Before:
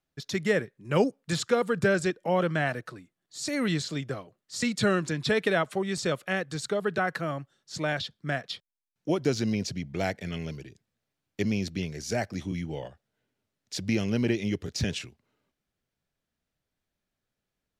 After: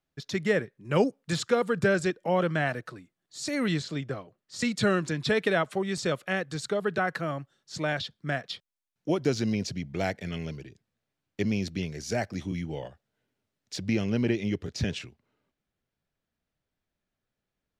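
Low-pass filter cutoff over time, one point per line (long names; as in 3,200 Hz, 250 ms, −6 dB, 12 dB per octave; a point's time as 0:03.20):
low-pass filter 6 dB per octave
5,800 Hz
from 0:00.90 9,400 Hz
from 0:03.79 3,700 Hz
from 0:04.59 9,200 Hz
from 0:10.50 5,100 Hz
from 0:11.52 9,200 Hz
from 0:13.76 4,000 Hz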